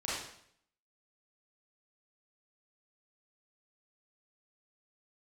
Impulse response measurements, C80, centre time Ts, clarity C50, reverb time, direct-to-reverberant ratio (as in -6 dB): 3.5 dB, 69 ms, -1.5 dB, 0.65 s, -9.0 dB